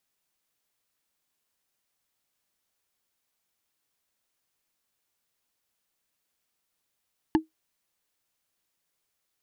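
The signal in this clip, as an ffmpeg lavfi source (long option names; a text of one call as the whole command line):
ffmpeg -f lavfi -i "aevalsrc='0.211*pow(10,-3*t/0.14)*sin(2*PI*317*t)+0.119*pow(10,-3*t/0.041)*sin(2*PI*874*t)+0.0668*pow(10,-3*t/0.018)*sin(2*PI*1713.1*t)+0.0376*pow(10,-3*t/0.01)*sin(2*PI*2831.8*t)+0.0211*pow(10,-3*t/0.006)*sin(2*PI*4228.8*t)':duration=0.45:sample_rate=44100" out.wav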